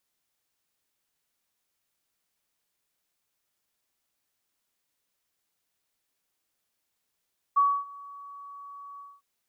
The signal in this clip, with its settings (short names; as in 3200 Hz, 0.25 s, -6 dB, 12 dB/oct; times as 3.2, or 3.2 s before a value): ADSR sine 1130 Hz, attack 16 ms, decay 0.269 s, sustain -24 dB, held 1.43 s, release 0.223 s -17 dBFS